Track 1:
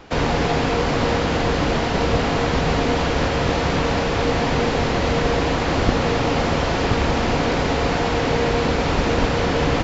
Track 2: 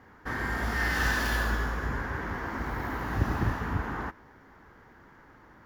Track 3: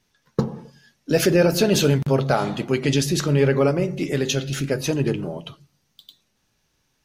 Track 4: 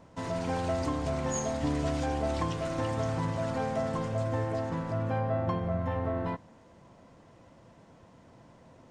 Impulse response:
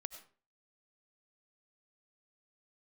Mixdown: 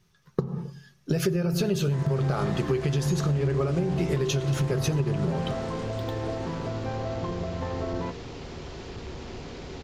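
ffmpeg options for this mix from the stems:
-filter_complex "[0:a]acrossover=split=210|3000[s0][s1][s2];[s1]acompressor=threshold=0.0447:ratio=6[s3];[s0][s3][s2]amix=inputs=3:normalize=0,asoftclip=type=tanh:threshold=0.168,adelay=2050,volume=0.168[s4];[1:a]lowpass=f=12000:w=0.5412,lowpass=f=12000:w=1.3066,adelay=1650,volume=0.2[s5];[2:a]lowshelf=f=210:t=q:w=3:g=6.5,acompressor=threshold=0.158:ratio=4,equalizer=f=1200:t=o:w=0.22:g=8.5,volume=0.631,asplit=2[s6][s7];[s7]volume=0.562[s8];[3:a]alimiter=level_in=1.19:limit=0.0631:level=0:latency=1,volume=0.841,adelay=1750,volume=1.12[s9];[4:a]atrim=start_sample=2205[s10];[s8][s10]afir=irnorm=-1:irlink=0[s11];[s4][s5][s6][s9][s11]amix=inputs=5:normalize=0,equalizer=f=380:t=o:w=0.23:g=13,acompressor=threshold=0.0794:ratio=6"

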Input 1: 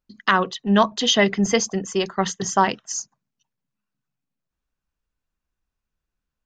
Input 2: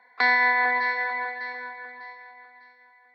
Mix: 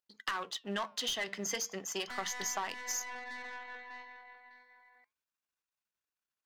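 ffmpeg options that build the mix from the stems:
-filter_complex "[0:a]aeval=exprs='if(lt(val(0),0),0.447*val(0),val(0))':c=same,highpass=f=1200:p=1,volume=1.41[s0];[1:a]acompressor=threshold=0.0224:ratio=3,aeval=exprs='(tanh(56.2*val(0)+0.6)-tanh(0.6))/56.2':c=same,adelay=1900,volume=1.12[s1];[s0][s1]amix=inputs=2:normalize=0,asoftclip=type=tanh:threshold=0.168,flanger=delay=1.9:depth=5.8:regen=-89:speed=0.34:shape=sinusoidal,acompressor=threshold=0.0224:ratio=6"

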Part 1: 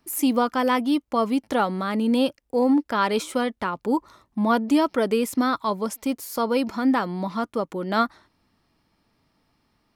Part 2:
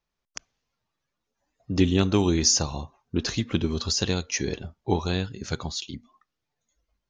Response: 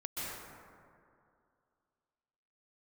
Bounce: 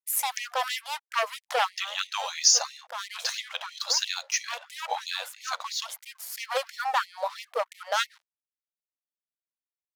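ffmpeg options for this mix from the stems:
-filter_complex "[0:a]aeval=exprs='0.355*sin(PI/2*2.82*val(0)/0.355)':c=same,aeval=exprs='0.376*(cos(1*acos(clip(val(0)/0.376,-1,1)))-cos(1*PI/2))+0.0211*(cos(3*acos(clip(val(0)/0.376,-1,1)))-cos(3*PI/2))':c=same,volume=0.398[s0];[1:a]volume=1.26,asplit=2[s1][s2];[s2]apad=whole_len=438900[s3];[s0][s3]sidechaincompress=threshold=0.0224:ratio=3:attack=29:release=990[s4];[s4][s1]amix=inputs=2:normalize=0,bandreject=f=60:t=h:w=6,bandreject=f=120:t=h:w=6,bandreject=f=180:t=h:w=6,bandreject=f=240:t=h:w=6,aeval=exprs='sgn(val(0))*max(abs(val(0))-0.0075,0)':c=same,afftfilt=real='re*gte(b*sr/1024,470*pow(1900/470,0.5+0.5*sin(2*PI*3*pts/sr)))':imag='im*gte(b*sr/1024,470*pow(1900/470,0.5+0.5*sin(2*PI*3*pts/sr)))':win_size=1024:overlap=0.75"

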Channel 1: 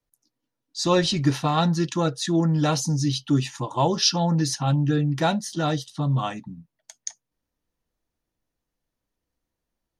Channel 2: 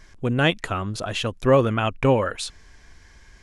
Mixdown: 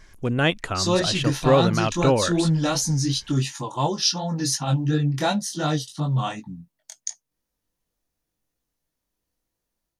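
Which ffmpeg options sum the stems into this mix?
-filter_complex "[0:a]highshelf=f=5100:g=8.5,dynaudnorm=f=110:g=3:m=2.24,flanger=delay=19:depth=4.3:speed=2.8,volume=0.596[s0];[1:a]volume=0.891[s1];[s0][s1]amix=inputs=2:normalize=0"

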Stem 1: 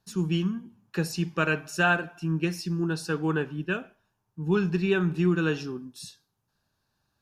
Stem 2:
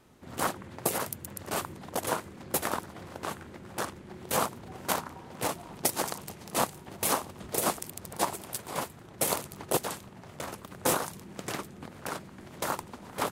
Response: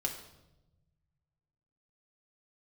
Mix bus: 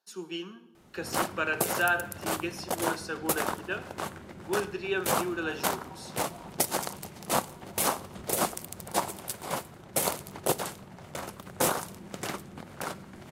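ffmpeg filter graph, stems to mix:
-filter_complex "[0:a]highpass=f=330:w=0.5412,highpass=f=330:w=1.3066,volume=0.447,asplit=2[s0][s1];[s1]volume=0.501[s2];[1:a]adelay=750,volume=0.891,asplit=2[s3][s4];[s4]volume=0.211[s5];[2:a]atrim=start_sample=2205[s6];[s2][s5]amix=inputs=2:normalize=0[s7];[s7][s6]afir=irnorm=-1:irlink=0[s8];[s0][s3][s8]amix=inputs=3:normalize=0"

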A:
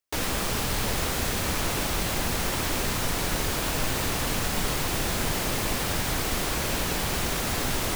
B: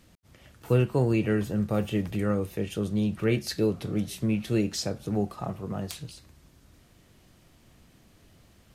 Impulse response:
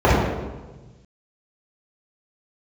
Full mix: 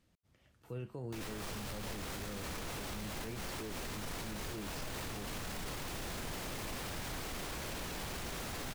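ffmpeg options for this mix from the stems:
-filter_complex "[0:a]asoftclip=type=tanh:threshold=0.119,adelay=1000,volume=0.631[s0];[1:a]volume=0.178,asplit=2[s1][s2];[s2]apad=whole_len=394774[s3];[s0][s3]sidechaincompress=threshold=0.00708:ratio=8:attack=16:release=245[s4];[s4][s1]amix=inputs=2:normalize=0,highshelf=f=8000:g=-4,alimiter=level_in=3.16:limit=0.0631:level=0:latency=1:release=33,volume=0.316"

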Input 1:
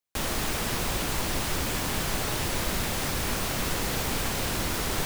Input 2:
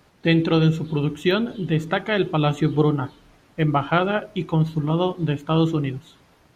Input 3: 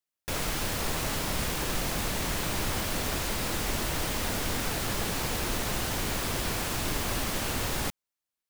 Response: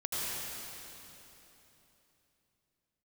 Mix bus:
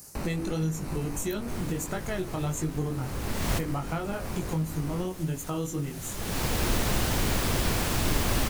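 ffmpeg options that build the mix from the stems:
-filter_complex "[0:a]lowpass=f=1700:w=0.5412,lowpass=f=1700:w=1.3066,acrusher=samples=13:mix=1:aa=0.000001,volume=1.19[s0];[1:a]aexciter=amount=15.1:drive=8.1:freq=5400,volume=1,asplit=2[s1][s2];[2:a]adelay=1200,volume=1.19[s3];[s2]apad=whole_len=427669[s4];[s3][s4]sidechaincompress=threshold=0.0112:ratio=8:attack=6.4:release=369[s5];[s0][s1]amix=inputs=2:normalize=0,flanger=delay=19:depth=3.8:speed=1.5,acompressor=threshold=0.0224:ratio=4,volume=1[s6];[s5][s6]amix=inputs=2:normalize=0,lowshelf=f=360:g=5.5"

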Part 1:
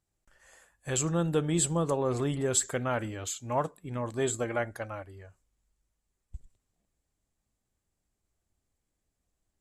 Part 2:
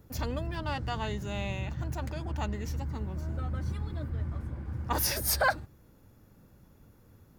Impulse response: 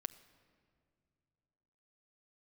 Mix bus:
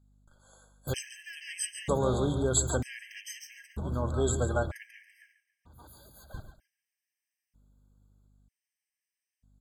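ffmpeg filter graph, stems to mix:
-filter_complex "[0:a]volume=1.06,asplit=3[s0][s1][s2];[s1]volume=0.266[s3];[1:a]asoftclip=type=tanh:threshold=0.0355,adelay=750,volume=1.33,asplit=2[s4][s5];[s5]volume=0.0794[s6];[s2]apad=whole_len=358616[s7];[s4][s7]sidechaingate=range=0.0224:threshold=0.00282:ratio=16:detection=peak[s8];[s3][s6]amix=inputs=2:normalize=0,aecho=0:1:140|280|420|560:1|0.31|0.0961|0.0298[s9];[s0][s8][s9]amix=inputs=3:normalize=0,aeval=exprs='val(0)+0.000794*(sin(2*PI*50*n/s)+sin(2*PI*2*50*n/s)/2+sin(2*PI*3*50*n/s)/3+sin(2*PI*4*50*n/s)/4+sin(2*PI*5*50*n/s)/5)':c=same,afftfilt=real='re*gt(sin(2*PI*0.53*pts/sr)*(1-2*mod(floor(b*sr/1024/1600),2)),0)':imag='im*gt(sin(2*PI*0.53*pts/sr)*(1-2*mod(floor(b*sr/1024/1600),2)),0)':win_size=1024:overlap=0.75"

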